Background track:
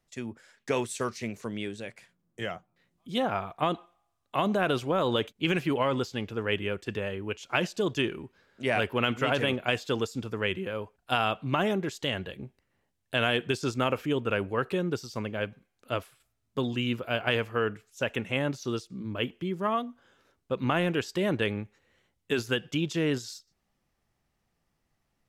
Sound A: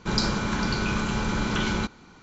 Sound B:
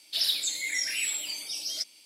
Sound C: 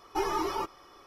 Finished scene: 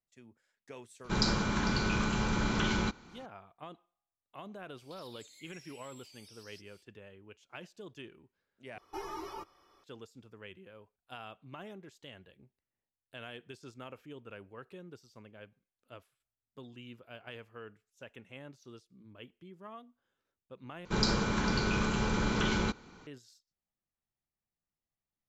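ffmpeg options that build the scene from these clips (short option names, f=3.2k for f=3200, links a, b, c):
-filter_complex "[1:a]asplit=2[a][b];[0:a]volume=-20dB[c];[2:a]acompressor=threshold=-43dB:ratio=6:attack=3.2:release=140:knee=1:detection=peak[d];[3:a]equalizer=f=91:w=4.2:g=4[e];[b]equalizer=f=450:w=4.6:g=5[f];[c]asplit=3[g][h][i];[g]atrim=end=8.784[j];[e]atrim=end=1.06,asetpts=PTS-STARTPTS,volume=-11.5dB[k];[h]atrim=start=9.836:end=20.854[l];[f]atrim=end=2.22,asetpts=PTS-STARTPTS,volume=-4.5dB[m];[i]atrim=start=23.066[n];[a]atrim=end=2.22,asetpts=PTS-STARTPTS,volume=-4.5dB,afade=t=in:d=0.004:c=hsin,afade=t=out:st=2.216:d=0.004:c=hsin,adelay=1040[o];[d]atrim=end=2.05,asetpts=PTS-STARTPTS,volume=-12dB,afade=t=in:d=0.004:c=hsin,afade=t=out:st=2.046:d=0.004:c=hsin,adelay=4780[p];[j][k]acrossfade=d=0.004:c1=hsin:c2=hsin[q];[q][l]acrossfade=d=0.004:c1=hsin:c2=hsin[r];[r][m]acrossfade=d=0.004:c1=hsin:c2=hsin[s];[s][n]acrossfade=d=0.004:c1=hsin:c2=hsin[t];[t][o][p]amix=inputs=3:normalize=0"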